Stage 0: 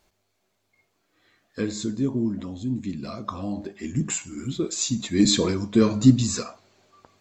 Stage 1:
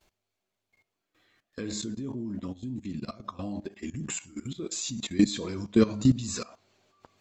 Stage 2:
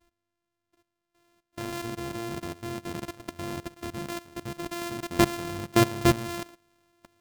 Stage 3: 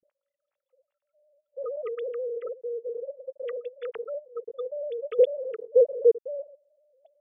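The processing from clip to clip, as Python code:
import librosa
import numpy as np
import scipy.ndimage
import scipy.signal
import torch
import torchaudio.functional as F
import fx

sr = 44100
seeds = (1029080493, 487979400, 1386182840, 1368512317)

y1 = fx.level_steps(x, sr, step_db=17)
y1 = fx.peak_eq(y1, sr, hz=2900.0, db=3.0, octaves=0.62)
y2 = np.r_[np.sort(y1[:len(y1) // 128 * 128].reshape(-1, 128), axis=1).ravel(), y1[len(y1) // 128 * 128:]]
y3 = fx.sine_speech(y2, sr)
y3 = F.gain(torch.from_numpy(y3), 2.0).numpy()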